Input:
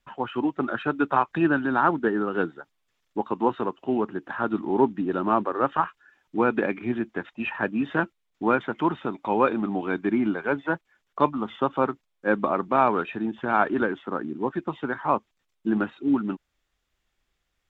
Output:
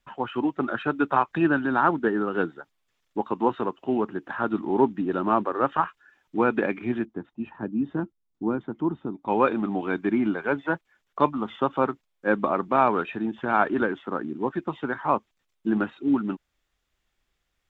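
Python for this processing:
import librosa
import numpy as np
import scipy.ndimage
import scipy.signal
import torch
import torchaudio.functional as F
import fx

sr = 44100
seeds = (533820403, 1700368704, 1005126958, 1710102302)

y = fx.curve_eq(x, sr, hz=(330.0, 560.0, 860.0, 2400.0, 3900.0), db=(0, -11, -9, -21, -15), at=(7.05, 9.28))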